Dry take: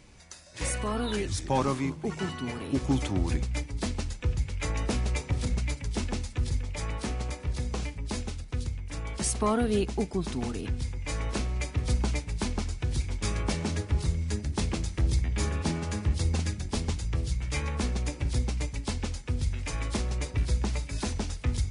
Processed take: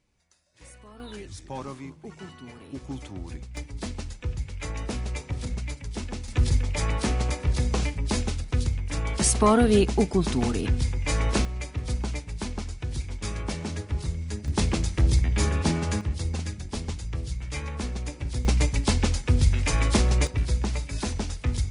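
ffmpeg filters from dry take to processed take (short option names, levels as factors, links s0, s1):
-af "asetnsamples=n=441:p=0,asendcmd='1 volume volume -9.5dB;3.57 volume volume -2.5dB;6.28 volume volume 7dB;11.45 volume volume -2dB;14.48 volume volume 5dB;16.01 volume volume -2dB;18.45 volume volume 9dB;20.27 volume volume 2dB',volume=0.126"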